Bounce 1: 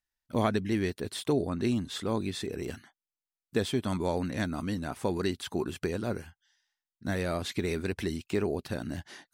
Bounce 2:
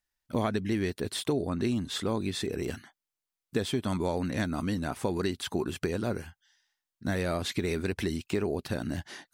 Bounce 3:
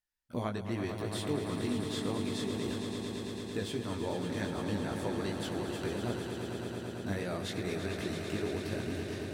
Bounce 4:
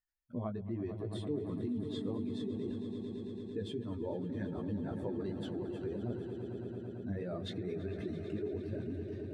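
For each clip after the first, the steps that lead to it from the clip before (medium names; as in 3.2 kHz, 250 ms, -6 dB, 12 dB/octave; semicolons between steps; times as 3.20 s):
compression 2.5:1, threshold -30 dBFS, peak gain reduction 6.5 dB; trim +3.5 dB
chorus 2.6 Hz, delay 16.5 ms, depth 4 ms; echo with a slow build-up 112 ms, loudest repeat 5, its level -9 dB; trim -4 dB
spectral contrast enhancement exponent 1.8; trim -3 dB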